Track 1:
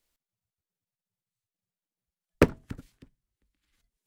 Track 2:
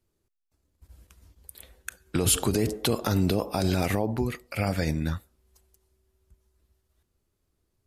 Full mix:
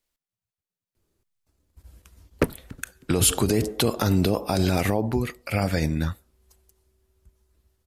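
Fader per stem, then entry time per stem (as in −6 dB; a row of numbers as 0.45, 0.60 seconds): −2.0, +3.0 decibels; 0.00, 0.95 seconds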